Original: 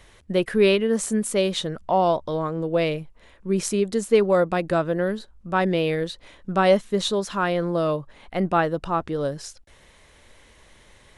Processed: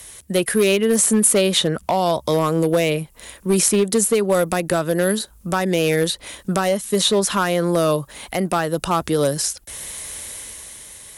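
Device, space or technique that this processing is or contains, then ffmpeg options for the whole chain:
FM broadcast chain: -filter_complex "[0:a]highpass=41,dynaudnorm=framelen=100:gausssize=17:maxgain=8.5dB,acrossover=split=170|3200[link_01][link_02][link_03];[link_01]acompressor=threshold=-32dB:ratio=4[link_04];[link_02]acompressor=threshold=-17dB:ratio=4[link_05];[link_03]acompressor=threshold=-43dB:ratio=4[link_06];[link_04][link_05][link_06]amix=inputs=3:normalize=0,aemphasis=mode=production:type=50fm,alimiter=limit=-10.5dB:level=0:latency=1:release=480,asoftclip=type=hard:threshold=-14.5dB,lowpass=frequency=15000:width=0.5412,lowpass=frequency=15000:width=1.3066,aemphasis=mode=production:type=50fm,volume=4dB"

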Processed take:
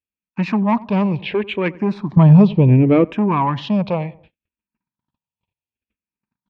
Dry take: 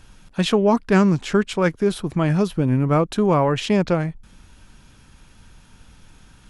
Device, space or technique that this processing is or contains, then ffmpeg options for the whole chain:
barber-pole phaser into a guitar amplifier: -filter_complex "[0:a]equalizer=frequency=210:width=4.3:gain=4.5,asplit=2[link_01][link_02];[link_02]afreqshift=-0.69[link_03];[link_01][link_03]amix=inputs=2:normalize=1,asoftclip=type=tanh:threshold=-15dB,highpass=89,equalizer=frequency=960:width_type=q:width=4:gain=8,equalizer=frequency=1400:width_type=q:width=4:gain=-8,equalizer=frequency=2500:width_type=q:width=4:gain=8,lowpass=frequency=3700:width=0.5412,lowpass=frequency=3700:width=1.3066,asplit=2[link_04][link_05];[link_05]adelay=92,lowpass=frequency=1100:poles=1,volume=-19dB,asplit=2[link_06][link_07];[link_07]adelay=92,lowpass=frequency=1100:poles=1,volume=0.46,asplit=2[link_08][link_09];[link_09]adelay=92,lowpass=frequency=1100:poles=1,volume=0.46,asplit=2[link_10][link_11];[link_11]adelay=92,lowpass=frequency=1100:poles=1,volume=0.46[link_12];[link_04][link_06][link_08][link_10][link_12]amix=inputs=5:normalize=0,agate=range=-46dB:threshold=-48dB:ratio=16:detection=peak,asettb=1/sr,asplit=3[link_13][link_14][link_15];[link_13]atrim=end=2.174[link_16];[link_14]atrim=start=2.17:end=3.05,asetpts=PTS-STARTPTS,afade=type=in:duration=0.004:curve=qsin,afade=type=out:start_time=0.876:duration=0.004:curve=qsin,lowshelf=frequency=480:gain=12[link_17];[link_15]atrim=start=3.046[link_18];[link_16][link_17]acrossfade=duration=0.004:curve1=hsin:curve2=qsin[link_19];[link_19][link_18]acrossfade=duration=0.004:curve1=qsin:curve2=hsin,volume=3dB"

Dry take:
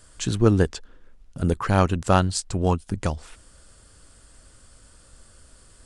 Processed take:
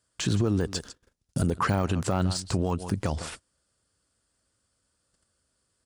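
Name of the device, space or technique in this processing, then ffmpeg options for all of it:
broadcast voice chain: -filter_complex "[0:a]aecho=1:1:153:0.0668,agate=range=-29dB:threshold=-42dB:ratio=16:detection=peak,asettb=1/sr,asplit=3[link_01][link_02][link_03];[link_01]atrim=end=0.734[link_04];[link_02]atrim=start=0.73:end=1.47,asetpts=PTS-STARTPTS,afade=type=in:duration=0.004:curve=qsin,afade=type=out:start_time=0.736:duration=0.004:curve=qsin,bass=frequency=250:gain=2,treble=frequency=4000:gain=13[link_05];[link_03]atrim=start=1.466[link_06];[link_04][link_05]acrossfade=duration=0.004:curve1=hsin:curve2=qsin[link_07];[link_07][link_06]acrossfade=duration=0.004:curve1=qsin:curve2=hsin,highpass=85,deesser=0.85,acompressor=threshold=-24dB:ratio=4,equalizer=frequency=4900:width_type=o:width=0.54:gain=3,alimiter=level_in=0.5dB:limit=-24dB:level=0:latency=1:release=64,volume=-0.5dB,volume=8.5dB"

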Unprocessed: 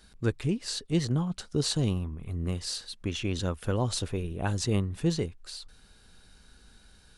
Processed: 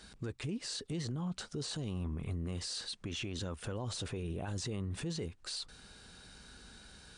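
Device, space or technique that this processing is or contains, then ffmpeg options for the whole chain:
podcast mastering chain: -af "highpass=frequency=87:poles=1,deesser=0.7,acompressor=threshold=-36dB:ratio=2.5,alimiter=level_in=12dB:limit=-24dB:level=0:latency=1:release=14,volume=-12dB,volume=5dB" -ar 22050 -c:a libmp3lame -b:a 96k

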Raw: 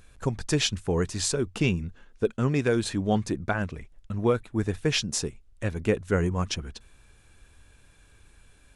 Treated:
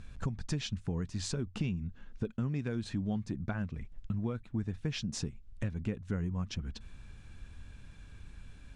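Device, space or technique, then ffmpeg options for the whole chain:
jukebox: -af "lowpass=6100,lowshelf=frequency=290:width_type=q:width=1.5:gain=7,acompressor=threshold=-34dB:ratio=4"

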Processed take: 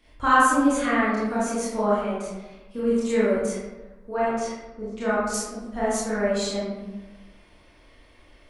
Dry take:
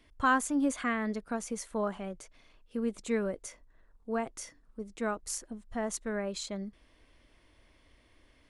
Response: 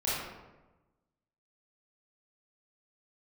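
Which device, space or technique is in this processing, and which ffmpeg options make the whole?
bathroom: -filter_complex "[1:a]atrim=start_sample=2205[link_01];[0:a][link_01]afir=irnorm=-1:irlink=0,asettb=1/sr,asplit=3[link_02][link_03][link_04];[link_02]atrim=end=4.144[link_05];[link_03]atrim=start=4.14:end=5.34,asetpts=PTS-STARTPTS,afade=type=in:duration=0.004:curve=qsin,afade=type=out:start_time=1.196:duration=0.004:curve=qsin,lowpass=5800[link_06];[link_04]atrim=start=5.336[link_07];[link_05][link_06]acrossfade=duration=0.004:curve1=hsin:curve2=qsin[link_08];[link_08][link_07]acrossfade=duration=0.004:curve1=qsin:curve2=hsin,equalizer=frequency=62:width_type=o:width=2.2:gain=-5.5,volume=2dB"

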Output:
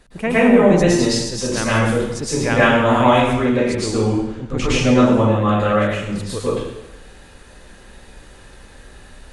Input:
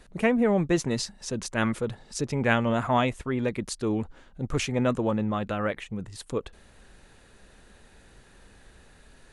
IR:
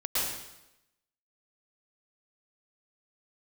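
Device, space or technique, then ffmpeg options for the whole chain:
bathroom: -filter_complex "[1:a]atrim=start_sample=2205[link_01];[0:a][link_01]afir=irnorm=-1:irlink=0,asettb=1/sr,asplit=3[link_02][link_03][link_04];[link_02]atrim=end=3.334[link_05];[link_03]atrim=start=3.33:end=5.14,asetpts=PTS-STARTPTS,afade=type=in:duration=0.004:curve=qsin,afade=type=out:start_time=1.806:duration=0.004:curve=qsin,lowpass=7700[link_06];[link_04]atrim=start=5.136[link_07];[link_05][link_06]acrossfade=duration=0.004:curve1=hsin:curve2=qsin[link_08];[link_08][link_07]acrossfade=duration=0.004:curve1=qsin:curve2=hsin,volume=2.5dB"

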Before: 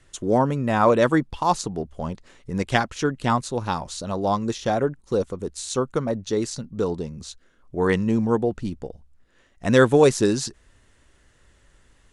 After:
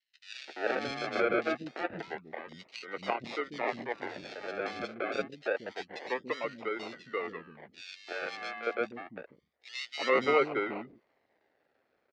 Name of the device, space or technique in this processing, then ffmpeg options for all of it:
circuit-bent sampling toy: -filter_complex "[0:a]acrusher=samples=36:mix=1:aa=0.000001:lfo=1:lforange=21.6:lforate=0.27,highpass=410,equalizer=frequency=1000:width_type=q:width=4:gain=-4,equalizer=frequency=2000:width_type=q:width=4:gain=6,equalizer=frequency=3300:width_type=q:width=4:gain=-4,lowpass=frequency=4200:width=0.5412,lowpass=frequency=4200:width=1.3066,asettb=1/sr,asplit=3[link_01][link_02][link_03];[link_01]atrim=end=7.784[link_04];[link_02]atrim=start=7.78:end=8.33,asetpts=PTS-STARTPTS,afade=type=in:duration=0.004:curve=qsin,afade=type=out:start_time=0.546:duration=0.004:curve=qsin,highpass=frequency=1300:poles=1[link_05];[link_03]atrim=start=8.326[link_06];[link_04][link_05]acrossfade=duration=0.004:curve1=hsin:curve2=qsin[link_07];[link_07][link_06]acrossfade=duration=0.004:curve1=qsin:curve2=hsin,acrossover=split=280|2800[link_08][link_09][link_10];[link_09]adelay=340[link_11];[link_08]adelay=480[link_12];[link_12][link_11][link_10]amix=inputs=3:normalize=0,volume=-6.5dB"

